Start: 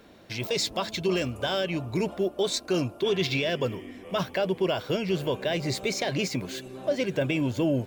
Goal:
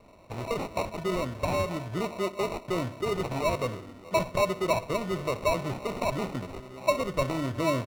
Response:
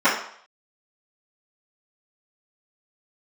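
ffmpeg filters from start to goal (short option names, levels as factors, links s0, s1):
-filter_complex "[0:a]equalizer=f=100:t=o:w=0.33:g=6,equalizer=f=630:t=o:w=0.33:g=11,equalizer=f=1600:t=o:w=0.33:g=10,equalizer=f=16000:t=o:w=0.33:g=5,asplit=2[s0][s1];[s1]adelay=62,lowpass=f=1200:p=1,volume=0.188,asplit=2[s2][s3];[s3]adelay=62,lowpass=f=1200:p=1,volume=0.53,asplit=2[s4][s5];[s5]adelay=62,lowpass=f=1200:p=1,volume=0.53,asplit=2[s6][s7];[s7]adelay=62,lowpass=f=1200:p=1,volume=0.53,asplit=2[s8][s9];[s9]adelay=62,lowpass=f=1200:p=1,volume=0.53[s10];[s0][s2][s4][s6][s8][s10]amix=inputs=6:normalize=0,asplit=2[s11][s12];[1:a]atrim=start_sample=2205[s13];[s12][s13]afir=irnorm=-1:irlink=0,volume=0.00841[s14];[s11][s14]amix=inputs=2:normalize=0,acrusher=samples=27:mix=1:aa=0.000001,aemphasis=mode=reproduction:type=cd,volume=0.562"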